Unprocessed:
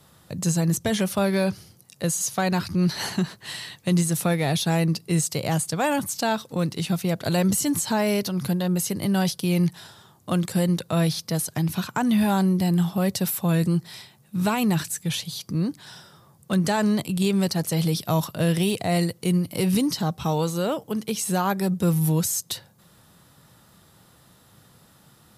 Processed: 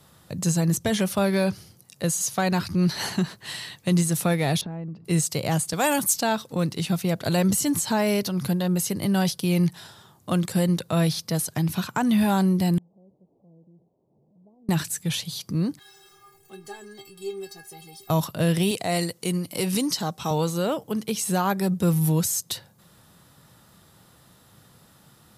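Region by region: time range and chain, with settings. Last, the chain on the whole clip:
4.61–5.05 s: low-pass 1.5 kHz + peaking EQ 190 Hz +6 dB 2.9 oct + compression 12:1, threshold -31 dBFS
5.73–6.16 s: high-pass 160 Hz + treble shelf 4.3 kHz +10.5 dB
12.78–14.69 s: one-bit delta coder 16 kbps, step -23 dBFS + Gaussian low-pass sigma 19 samples + differentiator
15.79–18.10 s: jump at every zero crossing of -35 dBFS + inharmonic resonator 390 Hz, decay 0.24 s, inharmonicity 0.008
18.71–20.31 s: high-pass 270 Hz 6 dB/octave + peaking EQ 7 kHz +4.5 dB 1.1 oct
whole clip: none

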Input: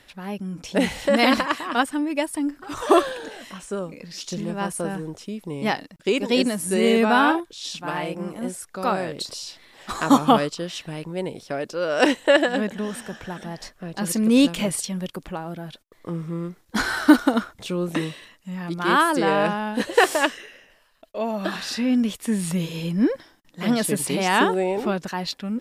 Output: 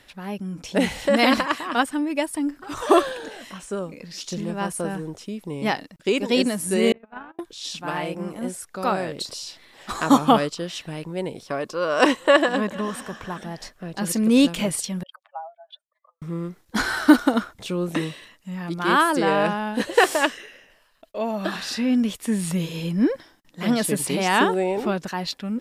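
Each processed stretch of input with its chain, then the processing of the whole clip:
6.92–7.39 s: low-pass 2.6 kHz 24 dB/octave + gate -14 dBFS, range -42 dB
11.46–13.40 s: peaking EQ 1.1 kHz +13.5 dB 0.23 oct + delay 444 ms -23 dB
15.03–16.22 s: spectral contrast enhancement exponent 2.3 + steep high-pass 620 Hz 96 dB/octave
whole clip: none

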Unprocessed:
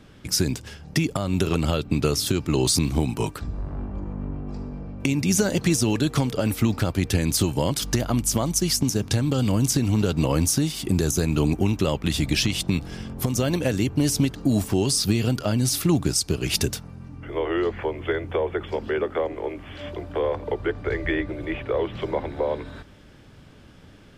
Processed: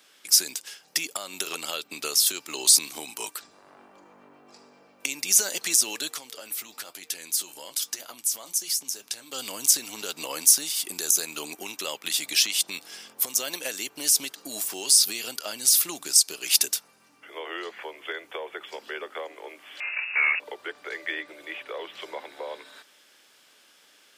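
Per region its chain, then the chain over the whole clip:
6.14–9.33 s: flange 1.1 Hz, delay 6.3 ms, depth 4.5 ms, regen -61% + compression 2.5:1, threshold -28 dBFS
19.80–20.40 s: square wave that keeps the level + high-pass 70 Hz + frequency inversion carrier 2.7 kHz
whole clip: high-pass 360 Hz 12 dB/octave; tilt EQ +4.5 dB/octave; trim -6.5 dB

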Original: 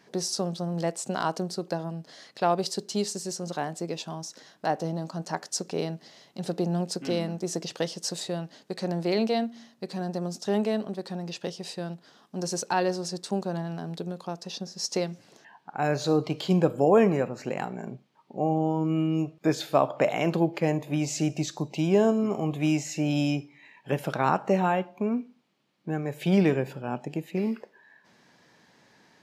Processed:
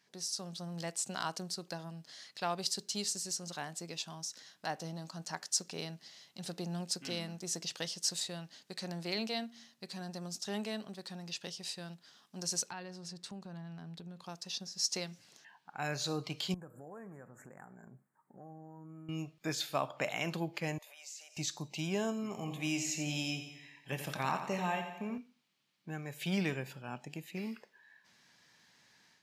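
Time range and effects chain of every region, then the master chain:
12.70–14.24 s: tone controls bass +7 dB, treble -9 dB + compression 2:1, threshold -37 dBFS
16.54–19.09 s: compression 2.5:1, threshold -40 dBFS + Chebyshev band-stop 1.7–8 kHz, order 3
20.78–21.37 s: elliptic high-pass 530 Hz, stop band 60 dB + compression 16:1, threshold -46 dBFS + treble shelf 4.8 kHz +5 dB
22.29–25.18 s: band-stop 1.4 kHz, Q 7.9 + doubling 23 ms -14 dB + feedback delay 87 ms, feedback 55%, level -9 dB
whole clip: amplifier tone stack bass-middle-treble 5-5-5; level rider gain up to 7 dB; trim -1.5 dB

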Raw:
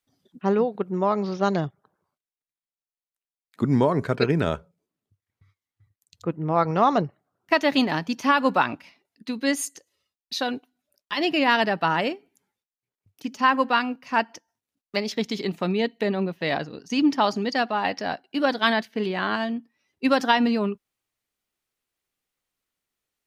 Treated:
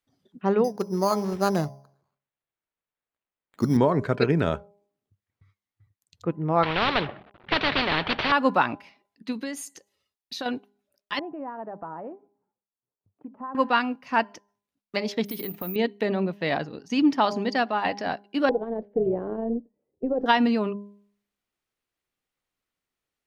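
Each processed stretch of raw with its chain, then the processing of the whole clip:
0.64–3.77 s: de-hum 137.6 Hz, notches 8 + careless resampling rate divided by 8×, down none, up hold
6.63–8.32 s: CVSD coder 32 kbps + steep low-pass 3.5 kHz + spectrum-flattening compressor 4:1
9.32–10.46 s: treble shelf 6.3 kHz +5.5 dB + compression 10:1, threshold -27 dBFS
11.19–13.55 s: bass shelf 160 Hz -9 dB + compression 2:1, threshold -39 dBFS + low-pass 1.1 kHz 24 dB/octave
15.25–15.76 s: treble shelf 5 kHz -6.5 dB + compression 10:1, threshold -29 dBFS + careless resampling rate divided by 3×, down filtered, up zero stuff
18.49–20.26 s: compression 12:1, threshold -24 dBFS + resonant low-pass 480 Hz, resonance Q 4.8 + AM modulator 250 Hz, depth 20%
whole clip: treble shelf 4.6 kHz -7.5 dB; de-hum 203.1 Hz, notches 5

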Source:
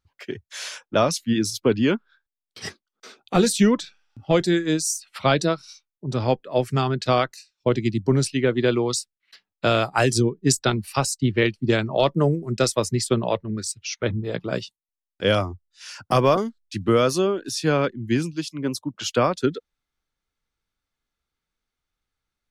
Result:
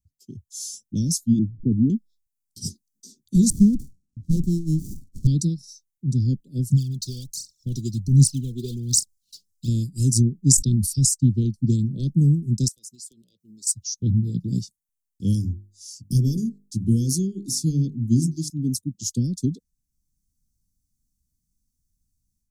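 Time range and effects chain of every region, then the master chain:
1.39–1.90 s: jump at every zero crossing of -32.5 dBFS + steep low-pass 670 Hz
3.50–5.27 s: distance through air 75 m + sliding maximum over 33 samples
6.70–9.68 s: peaking EQ 3.5 kHz +9.5 dB 2.9 oct + compression 1.5:1, threshold -39 dBFS + phaser 1.3 Hz, delay 2.7 ms, feedback 74%
10.44–11.09 s: low-pass 9.9 kHz + decay stretcher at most 60 dB/s
12.68–13.67 s: high-pass 990 Hz + compression 5:1, threshold -40 dBFS + hard clipper -31 dBFS
15.33–18.50 s: Butterworth band-stop 720 Hz, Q 1.8 + hum notches 50/100/150/200/250/300/350/400/450 Hz
whole clip: level rider; inverse Chebyshev band-stop 720–2100 Hz, stop band 70 dB

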